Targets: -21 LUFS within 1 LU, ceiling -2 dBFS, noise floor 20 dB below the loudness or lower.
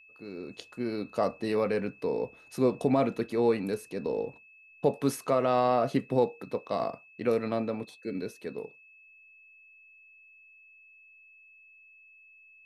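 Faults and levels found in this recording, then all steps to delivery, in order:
steady tone 2600 Hz; tone level -54 dBFS; loudness -30.0 LUFS; peak -13.0 dBFS; loudness target -21.0 LUFS
-> notch 2600 Hz, Q 30; gain +9 dB

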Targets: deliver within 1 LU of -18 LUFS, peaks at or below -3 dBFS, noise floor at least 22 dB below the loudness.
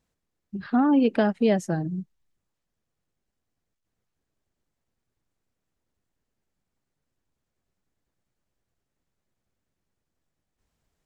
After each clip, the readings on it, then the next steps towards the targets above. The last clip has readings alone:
loudness -23.5 LUFS; peak -11.0 dBFS; loudness target -18.0 LUFS
-> gain +5.5 dB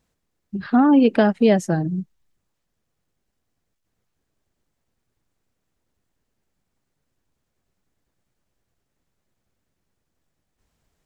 loudness -18.0 LUFS; peak -5.5 dBFS; noise floor -77 dBFS

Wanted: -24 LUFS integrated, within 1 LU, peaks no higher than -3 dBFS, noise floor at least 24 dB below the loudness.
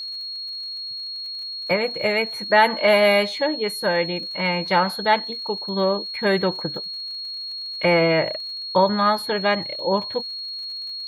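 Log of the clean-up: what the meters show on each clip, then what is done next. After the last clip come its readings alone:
ticks 54/s; steady tone 4300 Hz; tone level -29 dBFS; loudness -22.0 LUFS; peak -4.5 dBFS; loudness target -24.0 LUFS
-> de-click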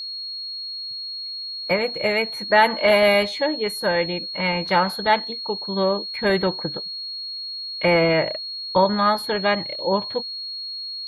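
ticks 0/s; steady tone 4300 Hz; tone level -29 dBFS
-> notch 4300 Hz, Q 30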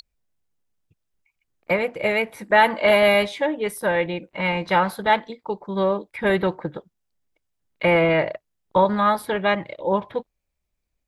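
steady tone none; loudness -21.5 LUFS; peak -5.0 dBFS; loudness target -24.0 LUFS
-> gain -2.5 dB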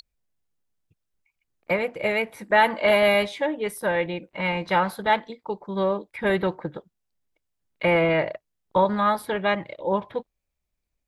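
loudness -23.5 LUFS; peak -7.5 dBFS; noise floor -81 dBFS

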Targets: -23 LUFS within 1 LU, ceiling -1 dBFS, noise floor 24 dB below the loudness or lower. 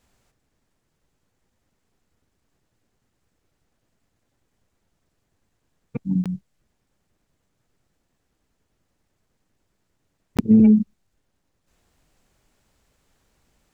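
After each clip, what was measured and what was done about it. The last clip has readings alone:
dropouts 2; longest dropout 17 ms; loudness -19.0 LUFS; peak -6.0 dBFS; loudness target -23.0 LUFS
-> interpolate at 6.24/10.37, 17 ms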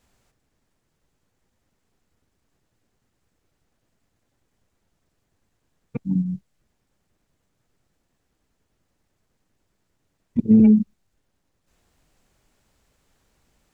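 dropouts 0; loudness -19.0 LUFS; peak -6.0 dBFS; loudness target -23.0 LUFS
-> gain -4 dB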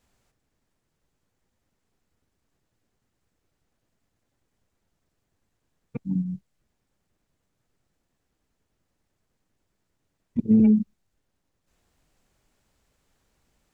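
loudness -22.5 LUFS; peak -10.0 dBFS; noise floor -78 dBFS

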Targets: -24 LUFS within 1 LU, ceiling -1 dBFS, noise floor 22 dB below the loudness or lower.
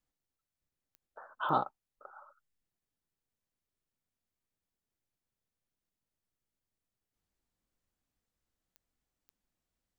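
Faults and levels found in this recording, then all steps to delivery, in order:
clicks 4; loudness -34.0 LUFS; peak -15.0 dBFS; loudness target -24.0 LUFS
-> de-click; gain +10 dB

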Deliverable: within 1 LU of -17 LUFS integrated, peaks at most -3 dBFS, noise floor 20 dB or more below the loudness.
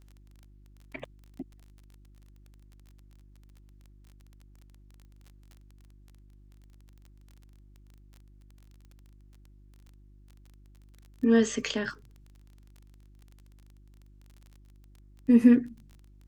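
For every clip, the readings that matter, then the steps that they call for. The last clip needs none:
ticks 24/s; hum 50 Hz; harmonics up to 350 Hz; hum level -53 dBFS; loudness -24.5 LUFS; peak -9.0 dBFS; loudness target -17.0 LUFS
-> de-click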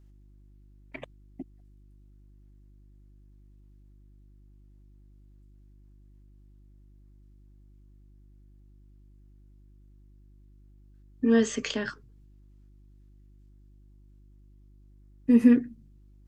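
ticks 0/s; hum 50 Hz; harmonics up to 350 Hz; hum level -53 dBFS
-> de-hum 50 Hz, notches 7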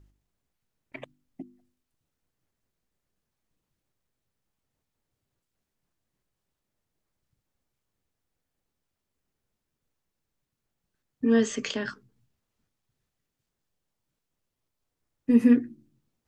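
hum none; loudness -24.0 LUFS; peak -9.0 dBFS; loudness target -17.0 LUFS
-> gain +7 dB; limiter -3 dBFS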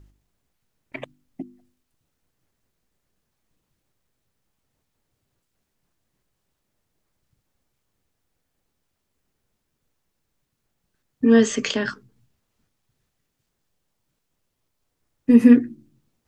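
loudness -17.5 LUFS; peak -3.0 dBFS; noise floor -77 dBFS

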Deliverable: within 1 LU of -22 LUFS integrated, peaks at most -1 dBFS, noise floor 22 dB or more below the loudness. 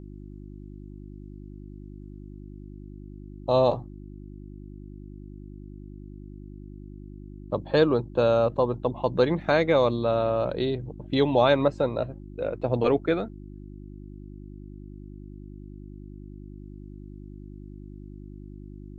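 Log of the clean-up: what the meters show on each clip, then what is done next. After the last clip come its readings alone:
hum 50 Hz; harmonics up to 350 Hz; hum level -39 dBFS; loudness -24.5 LUFS; peak -8.0 dBFS; loudness target -22.0 LUFS
-> de-hum 50 Hz, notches 7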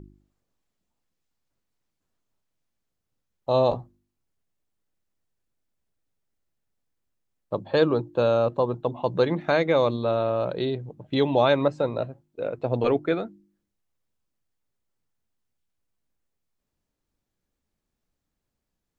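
hum none; loudness -24.5 LUFS; peak -8.0 dBFS; loudness target -22.0 LUFS
-> gain +2.5 dB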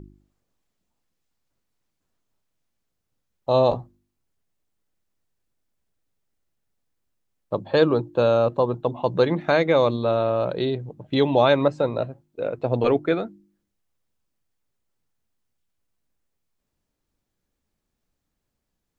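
loudness -22.0 LUFS; peak -5.5 dBFS; noise floor -79 dBFS

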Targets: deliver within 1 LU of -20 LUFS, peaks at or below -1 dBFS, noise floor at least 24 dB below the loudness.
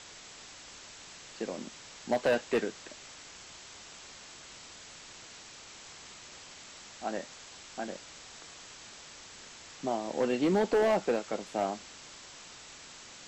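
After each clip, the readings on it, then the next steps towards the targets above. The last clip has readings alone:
clipped 0.6%; flat tops at -21.0 dBFS; noise floor -50 dBFS; noise floor target -56 dBFS; loudness -32.0 LUFS; peak -21.0 dBFS; loudness target -20.0 LUFS
-> clip repair -21 dBFS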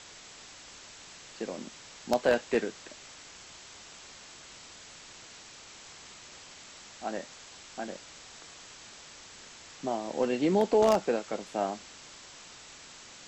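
clipped 0.0%; noise floor -50 dBFS; noise floor target -55 dBFS
-> denoiser 6 dB, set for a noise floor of -50 dBFS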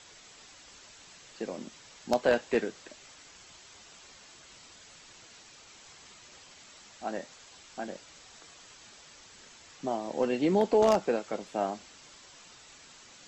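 noise floor -54 dBFS; noise floor target -55 dBFS
-> denoiser 6 dB, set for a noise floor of -54 dBFS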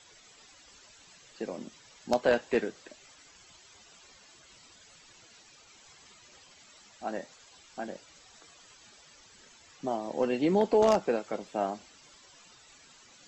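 noise floor -57 dBFS; loudness -30.5 LUFS; peak -12.0 dBFS; loudness target -20.0 LUFS
-> gain +10.5 dB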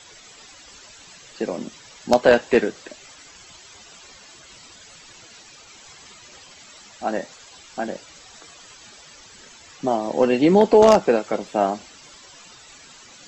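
loudness -20.0 LUFS; peak -1.5 dBFS; noise floor -47 dBFS

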